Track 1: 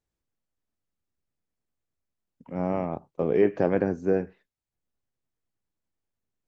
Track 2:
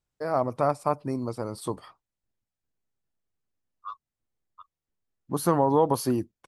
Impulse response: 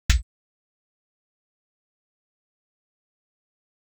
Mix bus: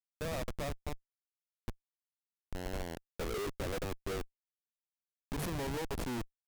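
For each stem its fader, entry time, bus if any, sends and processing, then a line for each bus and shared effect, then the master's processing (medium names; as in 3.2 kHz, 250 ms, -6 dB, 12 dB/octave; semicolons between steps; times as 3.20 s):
-5.5 dB, 0.00 s, no send, high-pass 320 Hz 24 dB/octave
-3.0 dB, 0.00 s, no send, high-order bell 2.5 kHz -8 dB; compression 16:1, threshold -25 dBFS, peak gain reduction 10.5 dB; auto duck -20 dB, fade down 1.90 s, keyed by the first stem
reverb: none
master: bass shelf 86 Hz -7.5 dB; hum notches 50/100/150 Hz; Schmitt trigger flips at -35 dBFS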